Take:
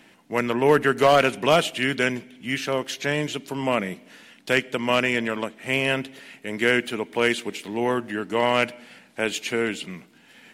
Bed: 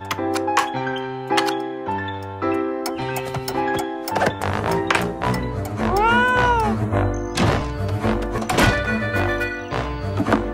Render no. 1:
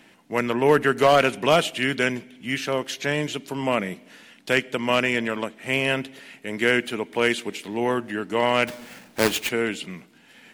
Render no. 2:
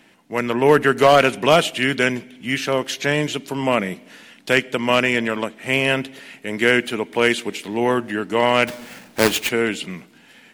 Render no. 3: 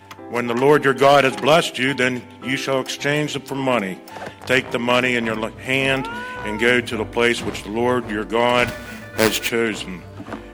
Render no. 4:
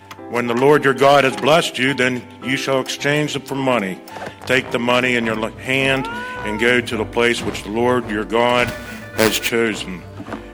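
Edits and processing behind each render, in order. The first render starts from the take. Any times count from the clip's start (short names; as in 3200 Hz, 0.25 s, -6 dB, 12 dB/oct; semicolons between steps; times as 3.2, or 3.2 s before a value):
8.67–9.49 half-waves squared off
AGC gain up to 5 dB
add bed -13.5 dB
gain +2.5 dB; limiter -3 dBFS, peak gain reduction 2.5 dB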